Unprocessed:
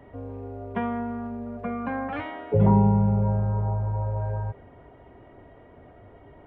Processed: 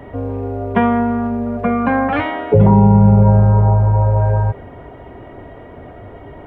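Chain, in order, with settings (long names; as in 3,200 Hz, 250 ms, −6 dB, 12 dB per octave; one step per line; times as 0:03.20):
boost into a limiter +15 dB
level −1 dB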